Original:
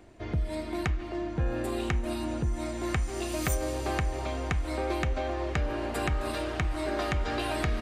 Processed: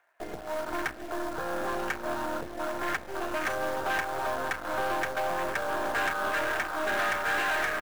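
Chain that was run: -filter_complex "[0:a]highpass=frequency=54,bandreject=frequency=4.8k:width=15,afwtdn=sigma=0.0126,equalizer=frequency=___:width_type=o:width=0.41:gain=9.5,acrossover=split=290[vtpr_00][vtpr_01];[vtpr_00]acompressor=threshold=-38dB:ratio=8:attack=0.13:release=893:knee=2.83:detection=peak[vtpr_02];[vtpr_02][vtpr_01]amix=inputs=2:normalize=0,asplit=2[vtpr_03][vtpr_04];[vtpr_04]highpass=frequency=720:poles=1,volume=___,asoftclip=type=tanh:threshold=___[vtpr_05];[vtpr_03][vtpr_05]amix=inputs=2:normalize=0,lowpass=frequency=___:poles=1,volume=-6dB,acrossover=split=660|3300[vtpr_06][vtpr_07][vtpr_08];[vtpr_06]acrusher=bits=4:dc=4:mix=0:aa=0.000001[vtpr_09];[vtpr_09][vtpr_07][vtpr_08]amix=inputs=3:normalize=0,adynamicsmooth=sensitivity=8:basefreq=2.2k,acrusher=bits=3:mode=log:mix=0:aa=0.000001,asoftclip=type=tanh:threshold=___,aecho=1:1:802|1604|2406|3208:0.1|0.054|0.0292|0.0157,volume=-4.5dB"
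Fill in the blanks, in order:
1.6k, 23dB, -11dB, 4.7k, -17.5dB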